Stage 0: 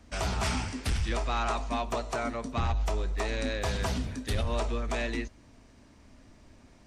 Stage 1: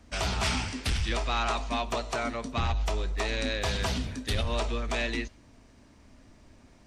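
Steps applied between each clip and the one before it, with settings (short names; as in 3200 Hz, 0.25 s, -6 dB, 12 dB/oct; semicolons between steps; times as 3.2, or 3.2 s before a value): dynamic EQ 3400 Hz, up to +6 dB, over -51 dBFS, Q 0.83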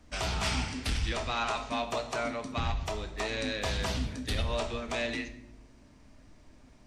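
shoebox room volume 220 m³, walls mixed, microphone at 0.47 m; gain -3 dB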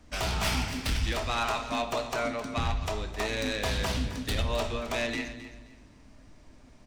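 tracing distortion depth 0.052 ms; feedback echo 0.264 s, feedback 25%, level -13.5 dB; gain +2 dB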